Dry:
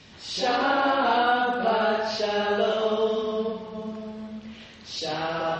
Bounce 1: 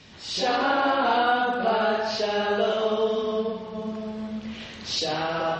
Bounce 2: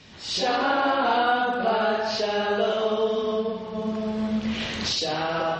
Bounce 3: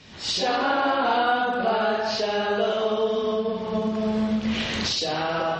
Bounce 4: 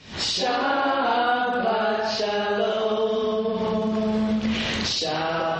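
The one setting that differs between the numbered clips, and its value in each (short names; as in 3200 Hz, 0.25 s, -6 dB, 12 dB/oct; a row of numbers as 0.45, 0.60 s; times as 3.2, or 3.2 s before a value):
recorder AGC, rising by: 5.2, 13, 33, 90 dB/s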